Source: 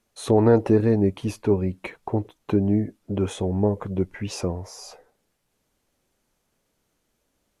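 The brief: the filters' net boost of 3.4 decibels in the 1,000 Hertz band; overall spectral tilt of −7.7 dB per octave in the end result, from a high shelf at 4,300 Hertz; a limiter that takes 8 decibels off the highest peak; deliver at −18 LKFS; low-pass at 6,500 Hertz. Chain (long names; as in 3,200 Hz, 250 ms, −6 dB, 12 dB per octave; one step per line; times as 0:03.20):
low-pass filter 6,500 Hz
parametric band 1,000 Hz +5 dB
high-shelf EQ 4,300 Hz −8.5 dB
level +8 dB
brickwall limiter −5 dBFS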